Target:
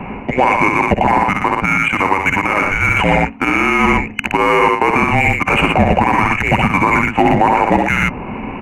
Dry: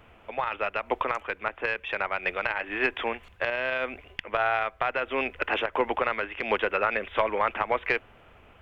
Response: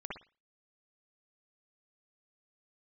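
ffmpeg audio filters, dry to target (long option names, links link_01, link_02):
-filter_complex "[0:a]adynamicsmooth=sensitivity=5:basefreq=1500,asplit=2[link_01][link_02];[link_02]aecho=0:1:51|66|119:0.112|0.422|0.376[link_03];[link_01][link_03]amix=inputs=2:normalize=0,afreqshift=-290,superequalizer=9b=2:12b=2.82:13b=0.447:14b=0.501,areverse,acompressor=threshold=-35dB:ratio=10,areverse,bandreject=frequency=5100:width=23,alimiter=level_in=28.5dB:limit=-1dB:release=50:level=0:latency=1,adynamicequalizer=threshold=0.0501:dfrequency=1500:dqfactor=0.7:tfrequency=1500:tqfactor=0.7:attack=5:release=100:ratio=0.375:range=2:mode=cutabove:tftype=highshelf"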